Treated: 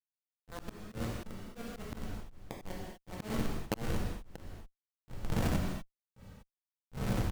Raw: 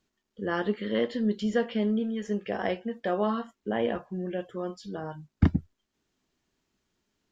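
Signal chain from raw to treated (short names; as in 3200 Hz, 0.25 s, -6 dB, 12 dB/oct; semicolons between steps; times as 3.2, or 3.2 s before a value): G.711 law mismatch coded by A; wind noise 250 Hz -32 dBFS; bell 61 Hz -13 dB 0.29 oct; outdoor echo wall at 16 m, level -10 dB; 3.15–5.56 dynamic EQ 150 Hz, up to +4 dB, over -36 dBFS, Q 0.91; Schmitt trigger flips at -21.5 dBFS; non-linear reverb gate 0.27 s falling, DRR 0 dB; auto swell 0.778 s; compressor 6:1, threshold -35 dBFS, peak gain reduction 8 dB; gain +8 dB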